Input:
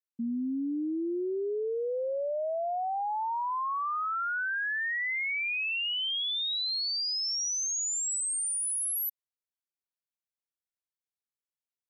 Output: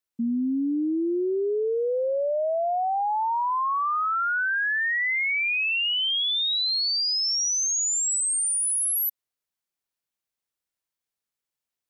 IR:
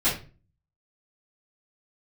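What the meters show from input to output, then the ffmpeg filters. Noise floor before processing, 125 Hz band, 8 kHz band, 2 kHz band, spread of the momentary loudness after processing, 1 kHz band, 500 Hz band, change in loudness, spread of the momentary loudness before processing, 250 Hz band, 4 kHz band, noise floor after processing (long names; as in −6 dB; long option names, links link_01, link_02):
below −85 dBFS, can't be measured, +6.5 dB, +6.5 dB, 4 LU, +6.5 dB, +6.5 dB, +6.5 dB, 4 LU, +6.5 dB, +6.5 dB, below −85 dBFS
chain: -af "acontrast=61"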